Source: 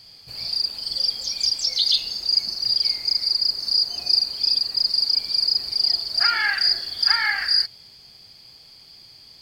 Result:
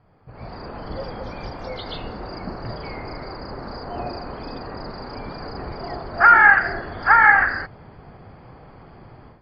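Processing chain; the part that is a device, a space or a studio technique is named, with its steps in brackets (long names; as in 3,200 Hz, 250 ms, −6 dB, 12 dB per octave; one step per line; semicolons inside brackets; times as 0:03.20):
action camera in a waterproof case (low-pass filter 1,400 Hz 24 dB per octave; automatic gain control gain up to 15 dB; level +3 dB; AAC 48 kbit/s 44,100 Hz)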